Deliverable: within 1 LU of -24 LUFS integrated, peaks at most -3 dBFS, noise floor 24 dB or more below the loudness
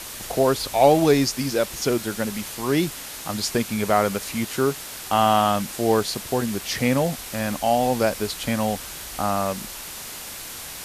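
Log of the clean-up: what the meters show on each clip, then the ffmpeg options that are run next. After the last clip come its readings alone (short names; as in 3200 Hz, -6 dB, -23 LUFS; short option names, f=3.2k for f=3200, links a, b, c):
noise floor -36 dBFS; noise floor target -47 dBFS; loudness -23.0 LUFS; peak -3.0 dBFS; loudness target -24.0 LUFS
-> -af "afftdn=nr=11:nf=-36"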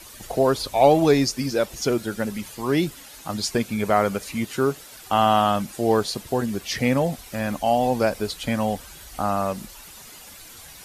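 noise floor -44 dBFS; noise floor target -47 dBFS
-> -af "afftdn=nr=6:nf=-44"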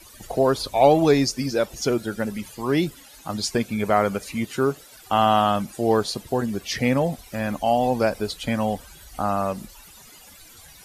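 noise floor -48 dBFS; loudness -23.0 LUFS; peak -4.0 dBFS; loudness target -24.0 LUFS
-> -af "volume=-1dB"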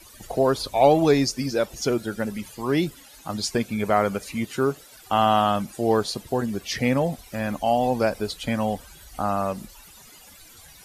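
loudness -24.0 LUFS; peak -5.0 dBFS; noise floor -49 dBFS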